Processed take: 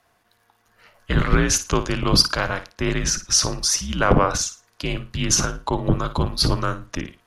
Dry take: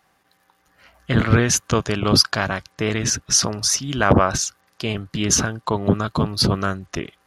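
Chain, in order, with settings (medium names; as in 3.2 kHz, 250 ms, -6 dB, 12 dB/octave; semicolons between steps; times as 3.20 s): frequency shift -73 Hz; flutter echo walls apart 9.6 m, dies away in 0.28 s; trim -1 dB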